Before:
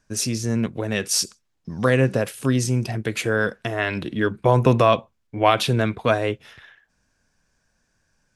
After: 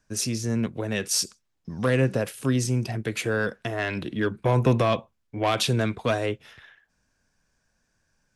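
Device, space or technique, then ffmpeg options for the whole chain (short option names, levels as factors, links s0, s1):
one-band saturation: -filter_complex "[0:a]asettb=1/sr,asplit=3[s0][s1][s2];[s0]atrim=end=5.444[s3];[s1]atrim=start=5.44:end=6.26,asetpts=PTS-STARTPTS,afade=t=in:d=0.004:c=qsin,afade=t=out:st=0.816:d=0.004:c=qsin,equalizer=f=6900:t=o:w=1.4:g=5.5[s4];[s2]atrim=start=6.256[s5];[s3][s4]acrossfade=d=0.004:c1=hsin:c2=qsin[s6];[s6][s5]acrossfade=d=0.004:c1=qsin:c2=hsin,acrossover=split=370|3200[s7][s8][s9];[s8]asoftclip=type=tanh:threshold=0.158[s10];[s7][s10][s9]amix=inputs=3:normalize=0,volume=0.708"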